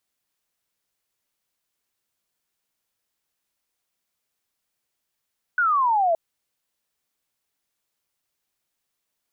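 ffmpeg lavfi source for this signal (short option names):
-f lavfi -i "aevalsrc='0.141*clip(t/0.002,0,1)*clip((0.57-t)/0.002,0,1)*sin(2*PI*1500*0.57/log(640/1500)*(exp(log(640/1500)*t/0.57)-1))':d=0.57:s=44100"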